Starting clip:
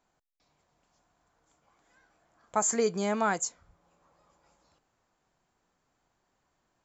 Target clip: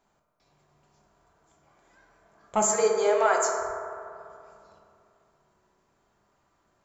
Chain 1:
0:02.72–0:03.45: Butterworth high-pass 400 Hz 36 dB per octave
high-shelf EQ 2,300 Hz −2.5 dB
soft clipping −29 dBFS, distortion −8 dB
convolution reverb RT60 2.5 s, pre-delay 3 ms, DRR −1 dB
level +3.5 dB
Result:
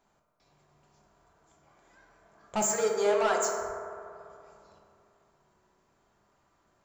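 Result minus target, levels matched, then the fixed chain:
soft clipping: distortion +12 dB
0:02.72–0:03.45: Butterworth high-pass 400 Hz 36 dB per octave
high-shelf EQ 2,300 Hz −2.5 dB
soft clipping −17 dBFS, distortion −21 dB
convolution reverb RT60 2.5 s, pre-delay 3 ms, DRR −1 dB
level +3.5 dB

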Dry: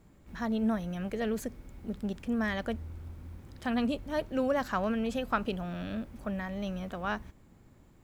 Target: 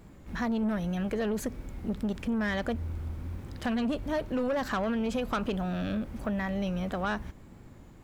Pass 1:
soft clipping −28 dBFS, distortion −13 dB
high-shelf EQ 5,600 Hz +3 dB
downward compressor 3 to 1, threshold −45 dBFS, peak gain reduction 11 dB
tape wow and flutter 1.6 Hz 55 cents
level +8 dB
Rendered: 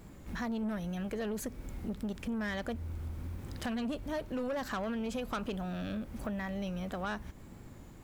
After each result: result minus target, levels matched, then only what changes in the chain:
downward compressor: peak gain reduction +6 dB; 8,000 Hz band +4.5 dB
change: downward compressor 3 to 1, threshold −36 dBFS, peak gain reduction 5 dB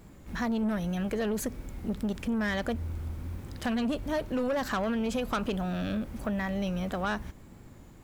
8,000 Hz band +4.0 dB
change: high-shelf EQ 5,600 Hz −3.5 dB

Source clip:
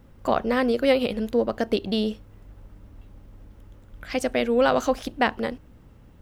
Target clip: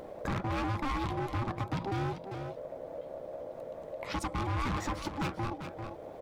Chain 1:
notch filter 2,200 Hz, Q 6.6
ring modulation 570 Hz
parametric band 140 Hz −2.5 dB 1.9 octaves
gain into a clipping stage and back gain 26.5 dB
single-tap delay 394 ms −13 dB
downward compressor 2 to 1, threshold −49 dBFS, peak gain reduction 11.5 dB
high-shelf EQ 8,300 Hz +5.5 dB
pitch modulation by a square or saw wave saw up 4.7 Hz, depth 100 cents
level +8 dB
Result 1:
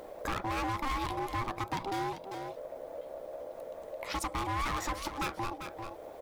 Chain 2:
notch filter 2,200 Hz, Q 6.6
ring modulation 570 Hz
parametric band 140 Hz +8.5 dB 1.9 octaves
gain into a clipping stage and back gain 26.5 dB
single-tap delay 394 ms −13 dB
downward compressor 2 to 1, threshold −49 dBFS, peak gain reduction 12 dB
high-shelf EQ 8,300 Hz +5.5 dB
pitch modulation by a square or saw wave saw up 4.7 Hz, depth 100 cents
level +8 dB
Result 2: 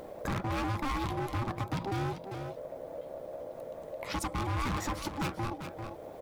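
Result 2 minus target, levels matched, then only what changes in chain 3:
8,000 Hz band +4.5 dB
change: high-shelf EQ 8,300 Hz −6 dB

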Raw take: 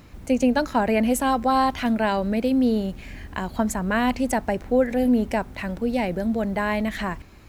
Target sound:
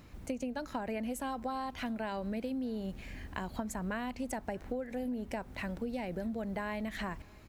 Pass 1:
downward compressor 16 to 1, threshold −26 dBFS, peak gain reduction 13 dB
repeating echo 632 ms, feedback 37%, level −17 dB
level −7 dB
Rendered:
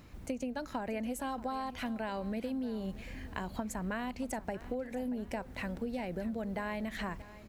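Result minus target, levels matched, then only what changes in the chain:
echo-to-direct +10.5 dB
change: repeating echo 632 ms, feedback 37%, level −27.5 dB

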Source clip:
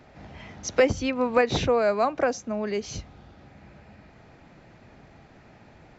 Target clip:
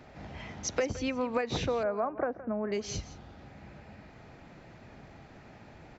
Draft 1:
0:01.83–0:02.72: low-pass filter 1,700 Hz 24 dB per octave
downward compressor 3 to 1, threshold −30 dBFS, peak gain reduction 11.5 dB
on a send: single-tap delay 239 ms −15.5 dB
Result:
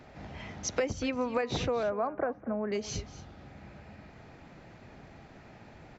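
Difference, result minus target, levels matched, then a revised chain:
echo 71 ms late
0:01.83–0:02.72: low-pass filter 1,700 Hz 24 dB per octave
downward compressor 3 to 1, threshold −30 dBFS, peak gain reduction 11.5 dB
on a send: single-tap delay 168 ms −15.5 dB

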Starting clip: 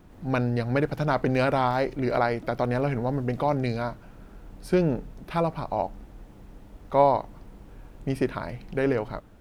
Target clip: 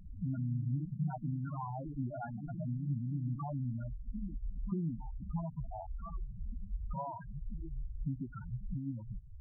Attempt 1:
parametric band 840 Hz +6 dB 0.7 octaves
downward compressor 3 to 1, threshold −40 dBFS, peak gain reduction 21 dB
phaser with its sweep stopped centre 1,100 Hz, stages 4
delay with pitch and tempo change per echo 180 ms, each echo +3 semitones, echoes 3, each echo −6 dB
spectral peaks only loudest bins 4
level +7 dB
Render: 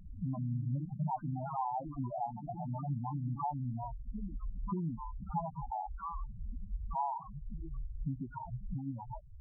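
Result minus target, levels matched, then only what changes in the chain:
1,000 Hz band +8.0 dB
change: parametric band 840 Hz −5 dB 0.7 octaves

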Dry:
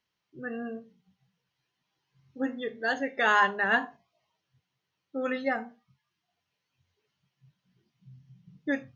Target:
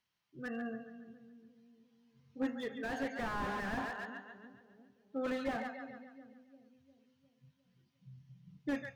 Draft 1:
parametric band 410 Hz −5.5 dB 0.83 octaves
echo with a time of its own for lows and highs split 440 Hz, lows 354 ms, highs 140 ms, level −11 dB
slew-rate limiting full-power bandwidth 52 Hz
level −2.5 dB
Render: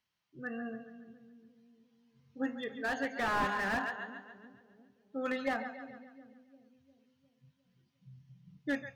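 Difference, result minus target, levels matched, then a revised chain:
slew-rate limiting: distortion −5 dB
parametric band 410 Hz −5.5 dB 0.83 octaves
echo with a time of its own for lows and highs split 440 Hz, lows 354 ms, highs 140 ms, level −11 dB
slew-rate limiting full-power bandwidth 20.5 Hz
level −2.5 dB

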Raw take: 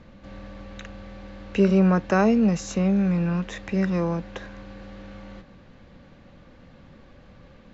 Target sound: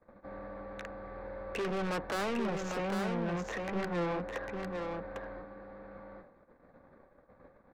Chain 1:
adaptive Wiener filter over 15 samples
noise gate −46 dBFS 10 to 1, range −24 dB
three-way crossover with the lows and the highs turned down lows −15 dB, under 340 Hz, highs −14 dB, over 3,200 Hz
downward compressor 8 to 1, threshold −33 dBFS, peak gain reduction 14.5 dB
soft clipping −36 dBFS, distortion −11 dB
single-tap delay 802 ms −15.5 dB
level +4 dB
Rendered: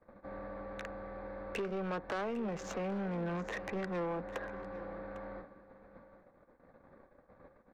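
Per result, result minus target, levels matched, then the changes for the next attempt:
downward compressor: peak gain reduction +14.5 dB; echo-to-direct −11 dB
remove: downward compressor 8 to 1, threshold −33 dBFS, peak gain reduction 14.5 dB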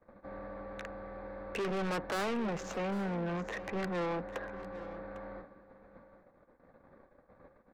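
echo-to-direct −11 dB
change: single-tap delay 802 ms −4.5 dB

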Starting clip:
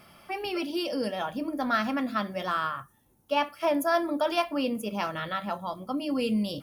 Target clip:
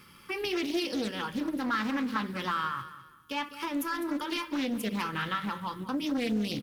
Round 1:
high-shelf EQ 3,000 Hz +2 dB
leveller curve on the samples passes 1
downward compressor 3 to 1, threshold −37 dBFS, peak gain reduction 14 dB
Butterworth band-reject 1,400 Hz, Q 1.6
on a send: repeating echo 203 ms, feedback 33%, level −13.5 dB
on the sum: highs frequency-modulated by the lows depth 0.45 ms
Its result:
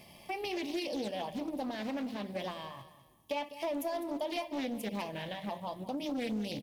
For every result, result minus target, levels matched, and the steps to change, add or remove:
downward compressor: peak gain reduction +6 dB; 500 Hz band +5.5 dB
change: downward compressor 3 to 1, threshold −28 dBFS, peak gain reduction 8 dB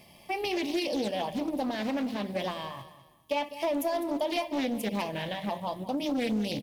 500 Hz band +5.5 dB
change: Butterworth band-reject 670 Hz, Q 1.6

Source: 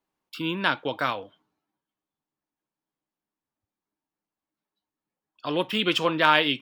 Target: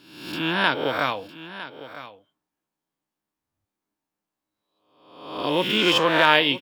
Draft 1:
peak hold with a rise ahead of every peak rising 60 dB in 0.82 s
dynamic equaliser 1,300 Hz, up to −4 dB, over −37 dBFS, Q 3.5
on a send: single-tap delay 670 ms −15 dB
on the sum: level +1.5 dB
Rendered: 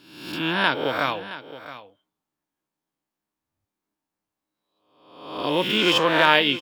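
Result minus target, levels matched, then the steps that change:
echo 286 ms early
change: single-tap delay 956 ms −15 dB

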